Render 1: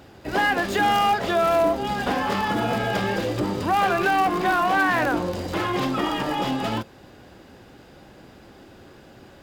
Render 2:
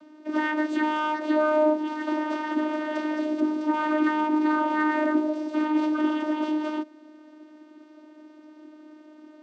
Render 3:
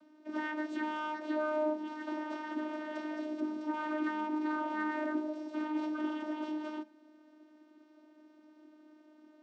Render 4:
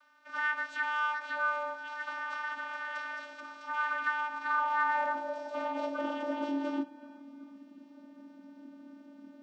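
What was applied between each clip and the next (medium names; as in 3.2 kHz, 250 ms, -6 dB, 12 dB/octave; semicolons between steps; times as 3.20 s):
vocoder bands 16, saw 306 Hz; trim -1.5 dB
feedback comb 220 Hz, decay 0.36 s, harmonics all, mix 70%; trim -1.5 dB
frequency shift -27 Hz; band-passed feedback delay 368 ms, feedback 62%, band-pass 1.2 kHz, level -16.5 dB; high-pass sweep 1.3 kHz -> 190 Hz, 4.35–7.73 s; trim +4 dB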